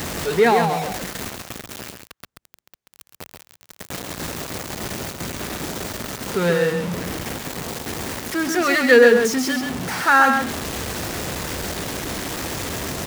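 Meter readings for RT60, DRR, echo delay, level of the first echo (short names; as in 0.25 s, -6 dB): none, none, 0.134 s, -5.5 dB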